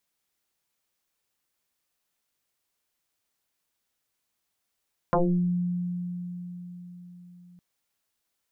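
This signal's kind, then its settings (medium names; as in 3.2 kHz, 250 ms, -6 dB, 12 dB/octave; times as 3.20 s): FM tone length 2.46 s, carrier 177 Hz, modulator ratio 0.98, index 7, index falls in 0.48 s exponential, decay 4.67 s, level -18 dB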